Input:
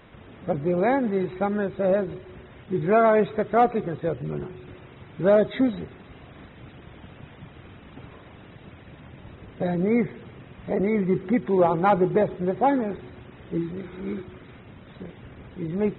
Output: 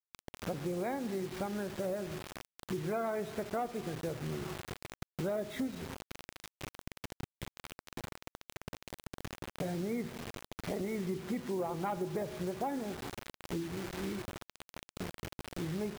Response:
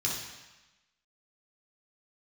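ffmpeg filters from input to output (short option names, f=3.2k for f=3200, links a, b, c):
-filter_complex "[0:a]asplit=2[a][b];[1:a]atrim=start_sample=2205,highshelf=f=3.2k:g=-5.5[c];[b][c]afir=irnorm=-1:irlink=0,volume=-19dB[d];[a][d]amix=inputs=2:normalize=0,acrusher=bits=5:mix=0:aa=0.000001,acompressor=threshold=-36dB:ratio=4"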